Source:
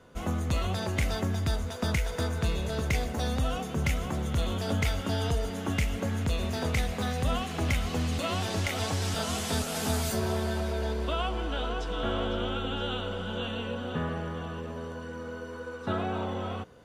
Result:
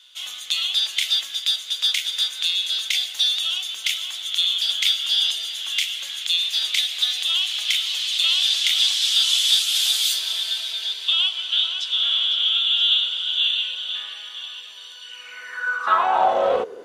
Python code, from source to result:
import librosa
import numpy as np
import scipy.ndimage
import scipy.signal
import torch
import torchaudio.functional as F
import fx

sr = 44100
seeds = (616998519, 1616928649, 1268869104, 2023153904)

y = fx.filter_sweep_highpass(x, sr, from_hz=3400.0, to_hz=400.0, start_s=15.02, end_s=16.75, q=6.1)
y = fx.doppler_dist(y, sr, depth_ms=0.11)
y = y * librosa.db_to_amplitude(9.0)